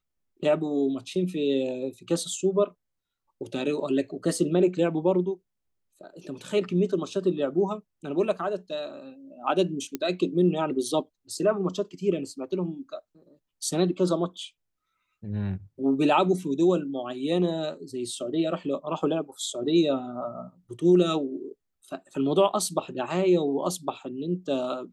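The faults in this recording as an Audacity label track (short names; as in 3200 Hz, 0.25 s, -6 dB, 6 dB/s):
9.950000	9.950000	pop -15 dBFS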